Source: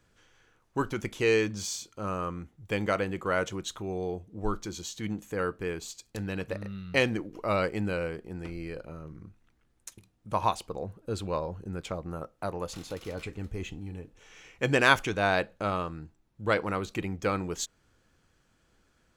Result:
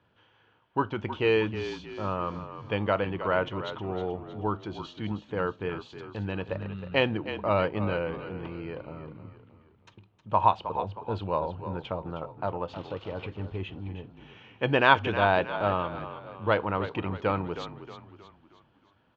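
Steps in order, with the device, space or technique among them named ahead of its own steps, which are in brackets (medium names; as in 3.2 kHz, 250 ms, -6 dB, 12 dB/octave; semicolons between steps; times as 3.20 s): frequency-shifting delay pedal into a guitar cabinet (frequency-shifting echo 314 ms, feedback 45%, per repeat -37 Hz, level -11 dB; cabinet simulation 99–3400 Hz, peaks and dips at 100 Hz +7 dB, 620 Hz +3 dB, 920 Hz +8 dB, 2.1 kHz -5 dB, 3 kHz +5 dB)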